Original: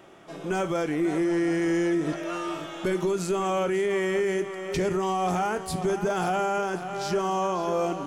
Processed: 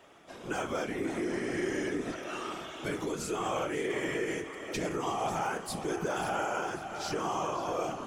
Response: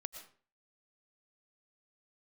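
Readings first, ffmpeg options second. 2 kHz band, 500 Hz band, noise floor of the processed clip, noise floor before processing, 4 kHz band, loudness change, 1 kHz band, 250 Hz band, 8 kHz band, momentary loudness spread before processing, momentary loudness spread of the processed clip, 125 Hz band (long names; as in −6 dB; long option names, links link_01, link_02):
−3.5 dB, −8.0 dB, −47 dBFS, −39 dBFS, −3.0 dB, −7.0 dB, −5.5 dB, −8.5 dB, −2.5 dB, 6 LU, 5 LU, −8.5 dB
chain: -af "tiltshelf=frequency=660:gain=-3.5,afftfilt=real='hypot(re,im)*cos(2*PI*random(0))':imag='hypot(re,im)*sin(2*PI*random(1))':win_size=512:overlap=0.75,bandreject=frequency=67.28:width_type=h:width=4,bandreject=frequency=134.56:width_type=h:width=4,bandreject=frequency=201.84:width_type=h:width=4,bandreject=frequency=269.12:width_type=h:width=4,bandreject=frequency=336.4:width_type=h:width=4,bandreject=frequency=403.68:width_type=h:width=4,bandreject=frequency=470.96:width_type=h:width=4,bandreject=frequency=538.24:width_type=h:width=4,bandreject=frequency=605.52:width_type=h:width=4,bandreject=frequency=672.8:width_type=h:width=4,bandreject=frequency=740.08:width_type=h:width=4,bandreject=frequency=807.36:width_type=h:width=4,bandreject=frequency=874.64:width_type=h:width=4,bandreject=frequency=941.92:width_type=h:width=4,bandreject=frequency=1009.2:width_type=h:width=4,bandreject=frequency=1076.48:width_type=h:width=4,bandreject=frequency=1143.76:width_type=h:width=4,bandreject=frequency=1211.04:width_type=h:width=4,bandreject=frequency=1278.32:width_type=h:width=4,bandreject=frequency=1345.6:width_type=h:width=4,bandreject=frequency=1412.88:width_type=h:width=4,bandreject=frequency=1480.16:width_type=h:width=4,bandreject=frequency=1547.44:width_type=h:width=4,bandreject=frequency=1614.72:width_type=h:width=4,bandreject=frequency=1682:width_type=h:width=4,bandreject=frequency=1749.28:width_type=h:width=4,bandreject=frequency=1816.56:width_type=h:width=4,bandreject=frequency=1883.84:width_type=h:width=4,bandreject=frequency=1951.12:width_type=h:width=4,bandreject=frequency=2018.4:width_type=h:width=4,bandreject=frequency=2085.68:width_type=h:width=4,bandreject=frequency=2152.96:width_type=h:width=4,bandreject=frequency=2220.24:width_type=h:width=4,bandreject=frequency=2287.52:width_type=h:width=4,bandreject=frequency=2354.8:width_type=h:width=4,bandreject=frequency=2422.08:width_type=h:width=4,bandreject=frequency=2489.36:width_type=h:width=4,bandreject=frequency=2556.64:width_type=h:width=4,bandreject=frequency=2623.92:width_type=h:width=4"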